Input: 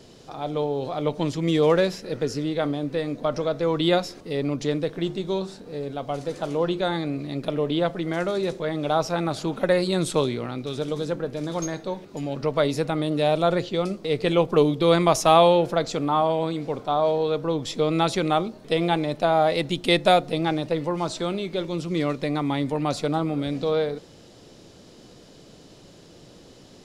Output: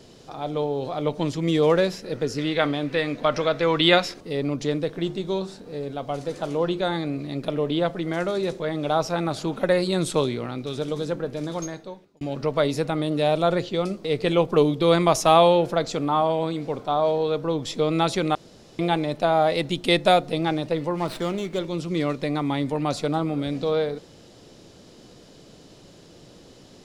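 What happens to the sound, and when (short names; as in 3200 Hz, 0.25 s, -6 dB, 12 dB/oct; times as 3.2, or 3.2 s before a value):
2.38–4.14 bell 2200 Hz +11 dB 2.1 oct
11.43–12.21 fade out
18.35–18.79 room tone
20.95–21.59 running maximum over 5 samples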